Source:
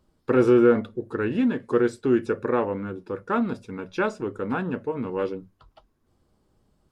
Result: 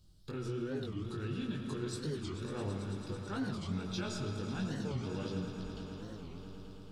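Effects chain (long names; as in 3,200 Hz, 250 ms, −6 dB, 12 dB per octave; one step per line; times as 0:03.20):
octave-band graphic EQ 125/250/500/1,000/2,000/4,000 Hz +4/−9/−12/−12/−12/+7 dB
downward compressor, threshold −36 dBFS, peak gain reduction 12.5 dB
brickwall limiter −36 dBFS, peak gain reduction 8.5 dB
chorus effect 3 Hz, delay 20 ms, depth 2.5 ms
echo that builds up and dies away 110 ms, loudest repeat 5, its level −14 dB
on a send at −4.5 dB: convolution reverb RT60 1.3 s, pre-delay 60 ms
on the sum: wow of a warped record 45 rpm, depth 250 cents
level +7.5 dB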